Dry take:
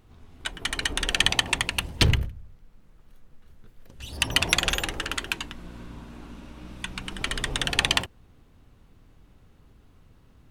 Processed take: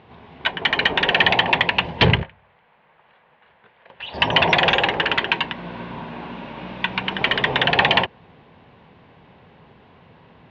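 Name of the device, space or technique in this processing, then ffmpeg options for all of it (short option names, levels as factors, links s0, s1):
overdrive pedal into a guitar cabinet: -filter_complex "[0:a]asplit=2[s0][s1];[s1]highpass=f=720:p=1,volume=12.6,asoftclip=type=tanh:threshold=0.891[s2];[s0][s2]amix=inputs=2:normalize=0,lowpass=f=1700:p=1,volume=0.501,highpass=82,equalizer=f=160:t=q:w=4:g=5,equalizer=f=300:t=q:w=4:g=-7,equalizer=f=930:t=q:w=4:g=3,equalizer=f=1300:t=q:w=4:g=-9,lowpass=f=3700:w=0.5412,lowpass=f=3700:w=1.3066,asettb=1/sr,asplit=3[s3][s4][s5];[s3]atrim=end=2.234[s6];[s4]atrim=start=2.23:end=4.14,asetpts=PTS-STARTPTS,afade=t=in:d=0.004:c=qsin,afade=t=out:st=1.906:d=0.004:c=qsin,acrossover=split=580 3800:gain=0.178 1 0.0708[s7][s8][s9];[s7][s8][s9]amix=inputs=3:normalize=0[s10];[s5]atrim=start=4.136[s11];[s6][s10]acrossfade=d=0.004:c1=hsin:c2=qsin[s12];[s12][s11]acrossfade=d=0.004:c1=qsin:c2=hsin,volume=1.5"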